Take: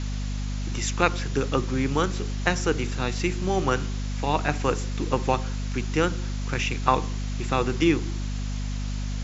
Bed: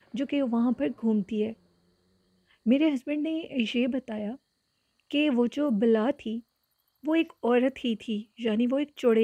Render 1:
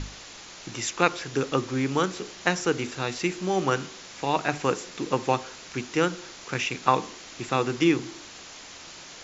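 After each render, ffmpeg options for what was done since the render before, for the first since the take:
ffmpeg -i in.wav -af "bandreject=frequency=50:width_type=h:width=6,bandreject=frequency=100:width_type=h:width=6,bandreject=frequency=150:width_type=h:width=6,bandreject=frequency=200:width_type=h:width=6,bandreject=frequency=250:width_type=h:width=6" out.wav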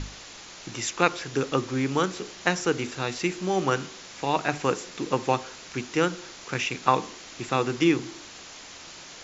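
ffmpeg -i in.wav -af anull out.wav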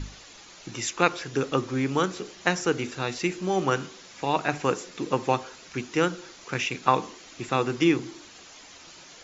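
ffmpeg -i in.wav -af "afftdn=noise_reduction=7:noise_floor=-44" out.wav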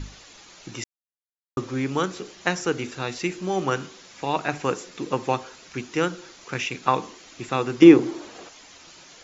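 ffmpeg -i in.wav -filter_complex "[0:a]asettb=1/sr,asplit=3[link_01][link_02][link_03];[link_01]atrim=end=7.824[link_04];[link_02]atrim=start=7.82:end=8.49,asetpts=PTS-STARTPTS,afade=type=in:duration=0.004:curve=qsin,afade=type=out:start_time=0.666:duration=0.004:curve=qsin,equalizer=frequency=500:width_type=o:width=2.7:gain=13.5[link_05];[link_03]atrim=start=8.486[link_06];[link_04][link_05]acrossfade=duration=0.004:curve1=hsin:curve2=qsin[link_07];[link_07][link_06]acrossfade=duration=0.004:curve1=qsin:curve2=hsin,asplit=3[link_08][link_09][link_10];[link_08]atrim=end=0.84,asetpts=PTS-STARTPTS,afade=type=out:start_time=0.836:duration=0.004:curve=hsin[link_11];[link_09]atrim=start=0.84:end=1.57,asetpts=PTS-STARTPTS,volume=0[link_12];[link_10]atrim=start=1.57,asetpts=PTS-STARTPTS,afade=type=in:duration=0.004:curve=hsin[link_13];[link_11][link_12][link_13]concat=n=3:v=0:a=1" out.wav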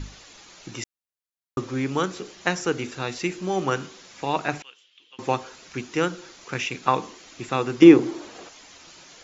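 ffmpeg -i in.wav -filter_complex "[0:a]asettb=1/sr,asplit=3[link_01][link_02][link_03];[link_01]atrim=end=4.624[link_04];[link_02]atrim=start=4.62:end=5.19,asetpts=PTS-STARTPTS,afade=type=in:duration=0.004:curve=qsin,afade=type=out:start_time=0.566:duration=0.004:curve=qsin,bandpass=frequency=3100:width_type=q:width=10[link_05];[link_03]atrim=start=5.186[link_06];[link_04][link_05]acrossfade=duration=0.004:curve1=hsin:curve2=qsin[link_07];[link_07][link_06]acrossfade=duration=0.004:curve1=qsin:curve2=hsin" out.wav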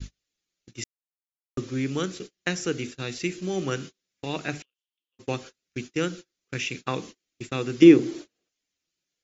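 ffmpeg -i in.wav -af "agate=range=-35dB:threshold=-35dB:ratio=16:detection=peak,equalizer=frequency=920:width=1.2:gain=-14" out.wav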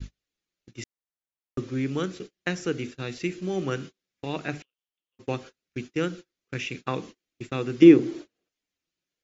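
ffmpeg -i in.wav -af "highshelf=frequency=4600:gain=-11" out.wav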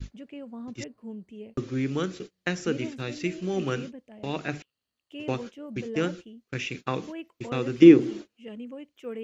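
ffmpeg -i in.wav -i bed.wav -filter_complex "[1:a]volume=-14dB[link_01];[0:a][link_01]amix=inputs=2:normalize=0" out.wav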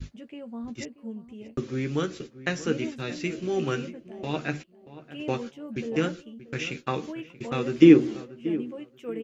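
ffmpeg -i in.wav -filter_complex "[0:a]asplit=2[link_01][link_02];[link_02]adelay=13,volume=-7dB[link_03];[link_01][link_03]amix=inputs=2:normalize=0,asplit=2[link_04][link_05];[link_05]adelay=632,lowpass=frequency=1600:poles=1,volume=-15dB,asplit=2[link_06][link_07];[link_07]adelay=632,lowpass=frequency=1600:poles=1,volume=0.22[link_08];[link_04][link_06][link_08]amix=inputs=3:normalize=0" out.wav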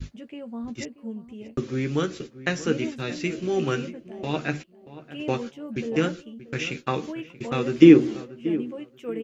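ffmpeg -i in.wav -af "volume=2.5dB,alimiter=limit=-2dB:level=0:latency=1" out.wav

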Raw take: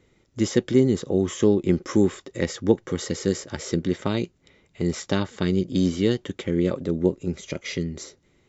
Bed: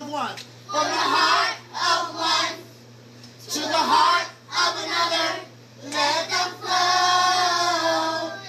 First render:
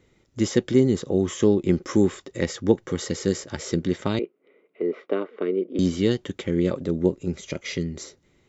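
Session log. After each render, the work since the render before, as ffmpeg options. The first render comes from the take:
ffmpeg -i in.wav -filter_complex "[0:a]asettb=1/sr,asplit=3[link_01][link_02][link_03];[link_01]atrim=end=4.194[link_04];[link_02]atrim=start=4.19:end=5.79,asetpts=PTS-STARTPTS,afade=type=in:duration=0.004:curve=qsin,afade=type=out:start_time=1.596:duration=0.004:curve=qsin,highpass=frequency=290:width=0.5412,highpass=frequency=290:width=1.3066,equalizer=frequency=440:width_type=q:width=4:gain=8,equalizer=frequency=860:width_type=q:width=4:gain=-9,equalizer=frequency=1700:width_type=q:width=4:gain=-10,lowpass=frequency=2200:width=0.5412,lowpass=frequency=2200:width=1.3066[link_05];[link_03]atrim=start=5.786[link_06];[link_04][link_05]acrossfade=duration=0.004:curve1=hsin:curve2=qsin[link_07];[link_07][link_06]acrossfade=duration=0.004:curve1=qsin:curve2=hsin" out.wav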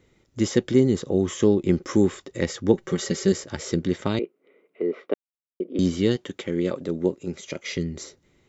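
ffmpeg -i in.wav -filter_complex "[0:a]asettb=1/sr,asplit=3[link_01][link_02][link_03];[link_01]atrim=end=2.734[link_04];[link_02]atrim=start=2.73:end=3.32,asetpts=PTS-STARTPTS,afade=type=in:duration=0.004:curve=qsin,afade=type=out:start_time=0.586:duration=0.004:curve=qsin,aecho=1:1:5.2:0.75,atrim=end_sample=26019[link_05];[link_03]atrim=start=3.316[link_06];[link_04][link_05]acrossfade=duration=0.004:curve1=hsin:curve2=qsin[link_07];[link_07][link_06]acrossfade=duration=0.004:curve1=qsin:curve2=hsin,asettb=1/sr,asplit=3[link_08][link_09][link_10];[link_08]atrim=end=6.164[link_11];[link_09]atrim=start=6.16:end=7.77,asetpts=PTS-STARTPTS,afade=type=in:duration=0.004:curve=qsin,afade=type=out:start_time=1.606:duration=0.004:curve=qsin,highpass=frequency=240:poles=1[link_12];[link_10]atrim=start=7.766[link_13];[link_11][link_12]acrossfade=duration=0.004:curve1=hsin:curve2=qsin[link_14];[link_14][link_13]acrossfade=duration=0.004:curve1=qsin:curve2=hsin,asplit=3[link_15][link_16][link_17];[link_15]atrim=end=5.14,asetpts=PTS-STARTPTS,afade=type=out:start_time=5.136:duration=0.004:curve=hsin[link_18];[link_16]atrim=start=5.14:end=5.6,asetpts=PTS-STARTPTS,volume=0[link_19];[link_17]atrim=start=5.6,asetpts=PTS-STARTPTS,afade=type=in:duration=0.004:curve=hsin[link_20];[link_18][link_19][link_20]concat=n=3:v=0:a=1" out.wav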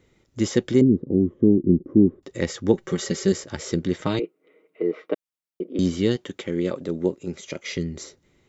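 ffmpeg -i in.wav -filter_complex "[0:a]asettb=1/sr,asplit=3[link_01][link_02][link_03];[link_01]atrim=end=0.814[link_04];[link_02]atrim=start=0.81:end=2.23,asetpts=PTS-STARTPTS,afade=type=in:duration=0.004:curve=qsin,afade=type=out:start_time=1.416:duration=0.004:curve=qsin,lowpass=frequency=280:width_type=q:width=2[link_05];[link_03]atrim=start=2.226[link_06];[link_04][link_05]acrossfade=duration=0.004:curve1=hsin:curve2=qsin[link_07];[link_07][link_06]acrossfade=duration=0.004:curve1=qsin:curve2=hsin,asettb=1/sr,asplit=3[link_08][link_09][link_10];[link_08]atrim=end=4.004[link_11];[link_09]atrim=start=4:end=5.63,asetpts=PTS-STARTPTS,afade=type=in:duration=0.004:curve=qsin,afade=type=out:start_time=1.626:duration=0.004:curve=qsin,aecho=1:1:6.4:0.55,atrim=end_sample=71883[link_12];[link_10]atrim=start=5.626[link_13];[link_11][link_12]acrossfade=duration=0.004:curve1=hsin:curve2=qsin[link_14];[link_14][link_13]acrossfade=duration=0.004:curve1=qsin:curve2=hsin" out.wav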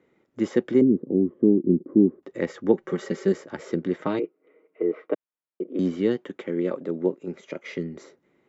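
ffmpeg -i in.wav -filter_complex "[0:a]acrossover=split=170 2300:gain=0.0631 1 0.141[link_01][link_02][link_03];[link_01][link_02][link_03]amix=inputs=3:normalize=0" out.wav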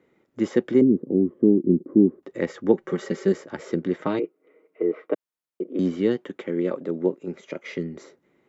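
ffmpeg -i in.wav -af "volume=1dB" out.wav

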